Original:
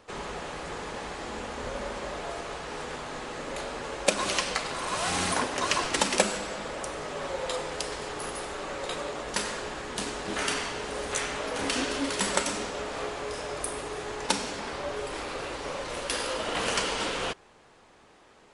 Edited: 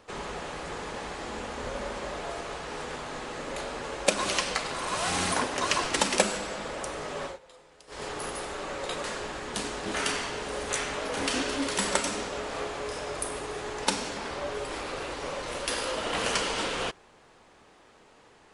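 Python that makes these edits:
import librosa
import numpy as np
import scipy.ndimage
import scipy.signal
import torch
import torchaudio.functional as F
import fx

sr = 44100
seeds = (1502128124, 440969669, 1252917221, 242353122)

y = fx.edit(x, sr, fx.fade_down_up(start_s=7.23, length_s=0.8, db=-22.0, fade_s=0.16),
    fx.cut(start_s=9.04, length_s=0.42), tone=tone)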